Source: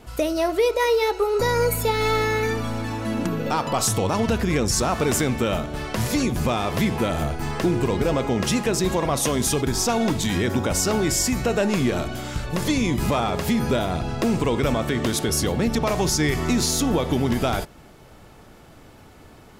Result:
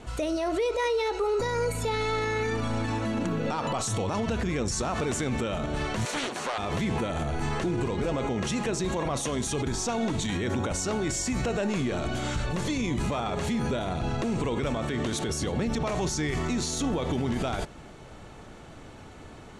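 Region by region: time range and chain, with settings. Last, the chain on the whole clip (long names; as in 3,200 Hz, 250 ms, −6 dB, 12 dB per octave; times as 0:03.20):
0:06.05–0:06.58: high-pass filter 550 Hz + highs frequency-modulated by the lows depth 0.51 ms
whole clip: brickwall limiter −22 dBFS; low-pass filter 8,900 Hz 24 dB per octave; notch filter 5,000 Hz, Q 8.3; level +1.5 dB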